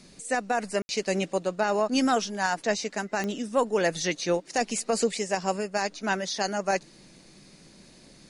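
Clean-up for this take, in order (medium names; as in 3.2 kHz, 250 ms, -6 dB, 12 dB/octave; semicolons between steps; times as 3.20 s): de-click; room tone fill 0.82–0.89 s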